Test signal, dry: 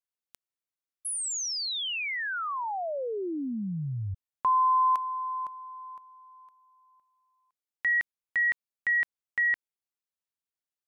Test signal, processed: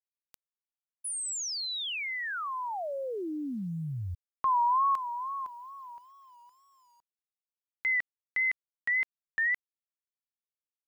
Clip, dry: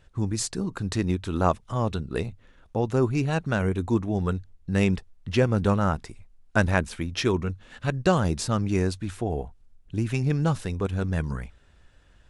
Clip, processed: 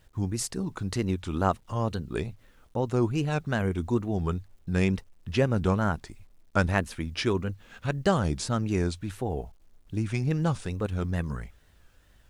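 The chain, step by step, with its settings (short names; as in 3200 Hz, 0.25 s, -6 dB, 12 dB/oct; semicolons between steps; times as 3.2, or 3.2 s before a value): wow and flutter 2.1 Hz 130 cents; bit-crush 11-bit; gain -2.5 dB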